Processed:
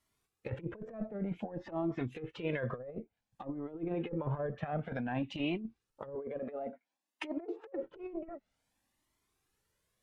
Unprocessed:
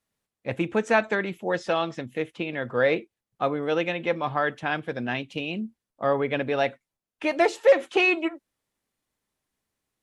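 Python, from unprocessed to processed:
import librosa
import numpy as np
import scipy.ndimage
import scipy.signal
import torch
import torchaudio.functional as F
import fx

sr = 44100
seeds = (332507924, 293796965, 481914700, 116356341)

y = fx.diode_clip(x, sr, knee_db=-11.0)
y = fx.highpass(y, sr, hz=230.0, slope=24, at=(6.15, 7.83))
y = fx.env_lowpass_down(y, sr, base_hz=450.0, full_db=-22.0)
y = fx.over_compress(y, sr, threshold_db=-33.0, ratio=-0.5)
y = fx.comb_cascade(y, sr, direction='rising', hz=0.55)
y = y * librosa.db_to_amplitude(1.5)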